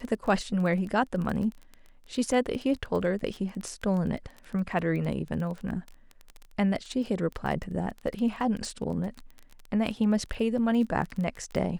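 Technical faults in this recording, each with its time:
crackle 21 per s -33 dBFS

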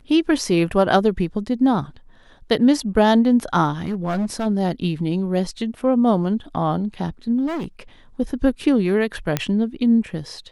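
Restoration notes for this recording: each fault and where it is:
3.81–4.47 s: clipped -19 dBFS
7.46–7.66 s: clipped -23.5 dBFS
9.37 s: pop -5 dBFS

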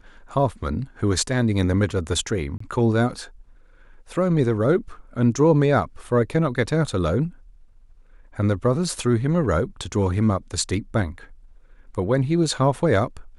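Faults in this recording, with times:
2.58–2.60 s: dropout 24 ms

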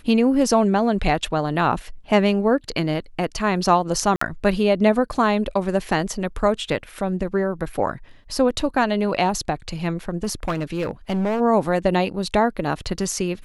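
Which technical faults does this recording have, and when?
4.16–4.21 s: dropout 54 ms
10.23–11.41 s: clipped -19 dBFS

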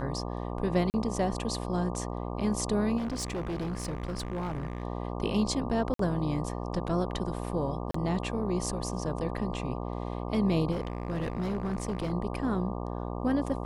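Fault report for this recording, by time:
buzz 60 Hz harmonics 20 -35 dBFS
0.90–0.94 s: dropout 39 ms
2.97–4.83 s: clipped -29.5 dBFS
5.94–5.99 s: dropout 53 ms
7.91–7.94 s: dropout 34 ms
10.71–12.13 s: clipped -27 dBFS

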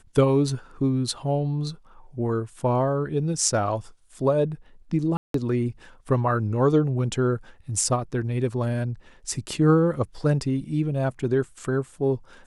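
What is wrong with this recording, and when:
5.17–5.34 s: dropout 173 ms

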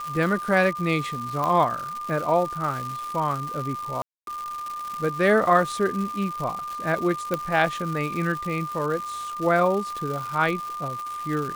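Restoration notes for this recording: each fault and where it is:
crackle 350 per s -30 dBFS
whine 1.2 kHz -30 dBFS
1.44 s: pop -14 dBFS
4.02–4.27 s: dropout 252 ms
7.34 s: pop -11 dBFS

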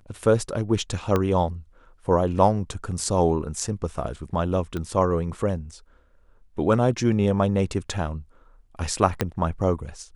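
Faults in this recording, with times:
1.16 s: pop -10 dBFS
4.77 s: pop -18 dBFS
9.21 s: pop -7 dBFS

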